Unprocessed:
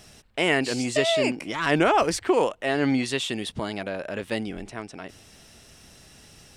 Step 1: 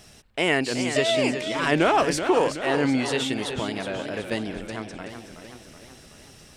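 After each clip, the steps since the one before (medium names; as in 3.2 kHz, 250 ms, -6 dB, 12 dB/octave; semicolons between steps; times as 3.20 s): modulated delay 374 ms, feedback 58%, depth 98 cents, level -9 dB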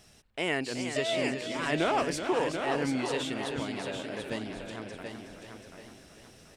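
feedback delay 734 ms, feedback 31%, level -7 dB; trim -8 dB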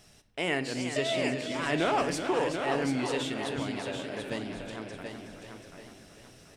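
simulated room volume 340 m³, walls mixed, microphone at 0.31 m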